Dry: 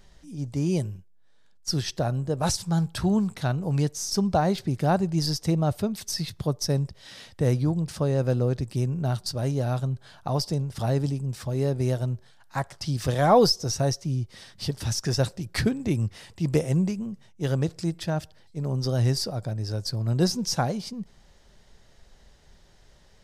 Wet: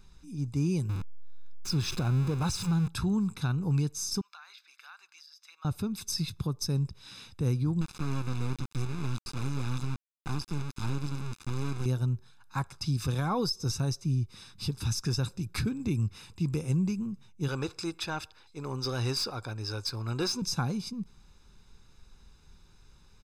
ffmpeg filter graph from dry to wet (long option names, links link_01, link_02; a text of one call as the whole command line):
ffmpeg -i in.wav -filter_complex "[0:a]asettb=1/sr,asplit=3[link_01][link_02][link_03];[link_01]atrim=end=0.894[link_04];[link_02]atrim=start=0.89:end=2.88,asetpts=PTS-STARTPTS,afade=type=in:duration=0.004:curve=qsin,afade=type=out:start_time=1.986:duration=0.004:curve=qsin,aeval=exprs='val(0)+0.5*0.0398*sgn(val(0))':channel_layout=same,highshelf=frequency=8800:gain=-10[link_05];[link_03]atrim=start=2.876[link_06];[link_04][link_05]acrossfade=duration=0.004:curve1=hsin:curve2=qsin[link_07];[link_07][link_06]acrossfade=duration=0.004:curve1=qsin:curve2=hsin,asettb=1/sr,asplit=3[link_08][link_09][link_10];[link_08]atrim=end=4.214[link_11];[link_09]atrim=start=4.21:end=5.65,asetpts=PTS-STARTPTS,afade=type=in:duration=0.004:curve=qsin,afade=type=out:start_time=1.436:duration=0.004:curve=qsin,highpass=frequency=1400:width=0.5412,highpass=frequency=1400:width=1.3066,acompressor=threshold=-41dB:ratio=12:attack=3.2:release=140:knee=1:detection=peak,equalizer=frequency=9500:width_type=o:width=1.3:gain=-15[link_12];[link_10]atrim=start=5.646[link_13];[link_11][link_12]acrossfade=duration=0.004:curve1=hsin:curve2=qsin[link_14];[link_14][link_13]acrossfade=duration=0.004:curve1=qsin:curve2=hsin,asettb=1/sr,asplit=3[link_15][link_16][link_17];[link_15]atrim=end=7.814[link_18];[link_16]atrim=start=7.81:end=11.86,asetpts=PTS-STARTPTS,afade=type=in:duration=0.004:curve=qsin,afade=type=out:start_time=4.046:duration=0.004:curve=qsin,acrusher=bits=3:dc=4:mix=0:aa=0.000001,lowpass=7900[link_19];[link_17]atrim=start=11.856[link_20];[link_18][link_19]acrossfade=duration=0.004:curve1=hsin:curve2=qsin[link_21];[link_21][link_20]acrossfade=duration=0.004:curve1=qsin:curve2=hsin,asettb=1/sr,asplit=3[link_22][link_23][link_24];[link_22]atrim=end=17.484[link_25];[link_23]atrim=start=17.48:end=20.42,asetpts=PTS-STARTPTS,afade=type=in:duration=0.004:curve=qsin,afade=type=out:start_time=2.936:duration=0.004:curve=qsin,equalizer=frequency=170:width_type=o:width=0.85:gain=-13,asplit=2[link_26][link_27];[link_27]highpass=frequency=720:poles=1,volume=15dB,asoftclip=type=tanh:threshold=-14.5dB[link_28];[link_26][link_28]amix=inputs=2:normalize=0,lowpass=frequency=3300:poles=1,volume=-6dB[link_29];[link_24]atrim=start=20.416[link_30];[link_25][link_29]acrossfade=duration=0.004:curve1=hsin:curve2=qsin[link_31];[link_31][link_30]acrossfade=duration=0.004:curve1=qsin:curve2=hsin,aecho=1:1:0.8:0.77,alimiter=limit=-16dB:level=0:latency=1:release=143,volume=-5dB" out.wav